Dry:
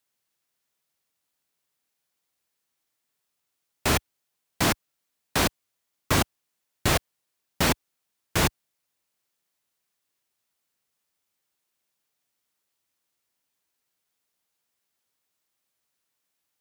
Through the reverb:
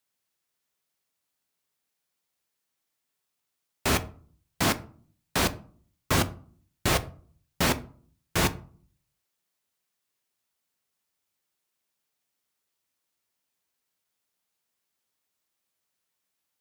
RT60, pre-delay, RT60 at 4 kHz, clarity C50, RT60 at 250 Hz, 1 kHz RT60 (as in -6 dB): 0.45 s, 5 ms, 0.25 s, 18.0 dB, 0.65 s, 0.45 s